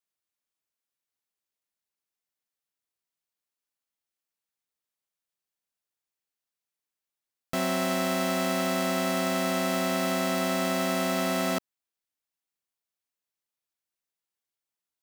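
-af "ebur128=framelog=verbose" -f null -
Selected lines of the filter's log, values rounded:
Integrated loudness:
  I:         -27.1 LUFS
  Threshold: -37.1 LUFS
Loudness range:
  LRA:         9.2 LU
  Threshold: -49.1 LUFS
  LRA low:   -36.0 LUFS
  LRA high:  -26.8 LUFS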